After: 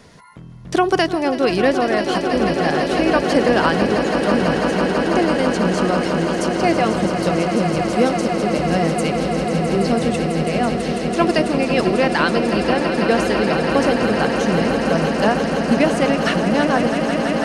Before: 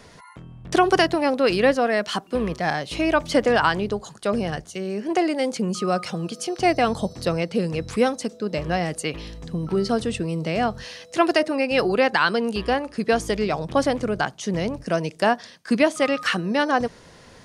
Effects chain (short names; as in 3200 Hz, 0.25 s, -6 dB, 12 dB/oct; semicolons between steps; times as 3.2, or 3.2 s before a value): bell 190 Hz +4.5 dB 1.6 oct; swelling echo 0.165 s, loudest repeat 8, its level -10 dB